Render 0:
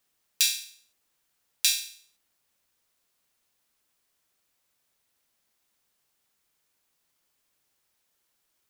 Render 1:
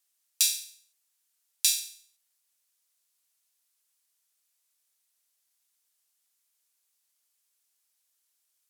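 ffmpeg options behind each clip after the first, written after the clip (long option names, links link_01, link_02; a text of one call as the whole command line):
ffmpeg -i in.wav -af "highpass=frequency=610:poles=1,equalizer=frequency=10000:width=0.32:gain=13,volume=-10.5dB" out.wav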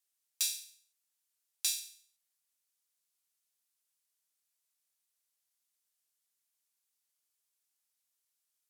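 ffmpeg -i in.wav -af "asoftclip=type=tanh:threshold=-9.5dB,volume=-7.5dB" out.wav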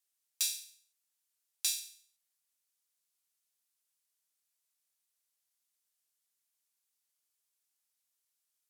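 ffmpeg -i in.wav -af anull out.wav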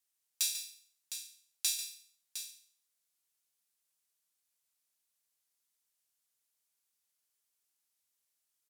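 ffmpeg -i in.wav -af "aecho=1:1:143|709:0.282|0.316" out.wav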